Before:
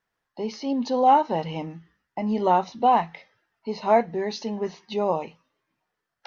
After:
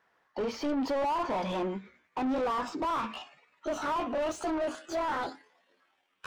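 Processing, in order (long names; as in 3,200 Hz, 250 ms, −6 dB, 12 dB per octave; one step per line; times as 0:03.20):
pitch glide at a constant tempo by +10.5 semitones starting unshifted
brickwall limiter −18.5 dBFS, peak gain reduction 11 dB
mid-hump overdrive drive 27 dB, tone 1,100 Hz, clips at −18.5 dBFS
level −4.5 dB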